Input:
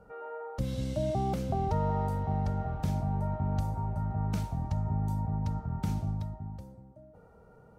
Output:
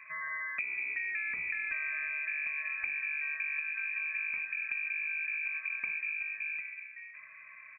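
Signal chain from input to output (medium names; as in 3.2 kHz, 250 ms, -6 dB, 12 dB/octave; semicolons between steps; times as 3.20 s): 4.01–5.54 s: median filter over 15 samples; frequency inversion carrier 2.5 kHz; 1.29–2.12 s: bass shelf 210 Hz +10 dB; feedback delay 508 ms, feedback 21%, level -22.5 dB; compression 6:1, threshold -38 dBFS, peak gain reduction 13.5 dB; trim +4.5 dB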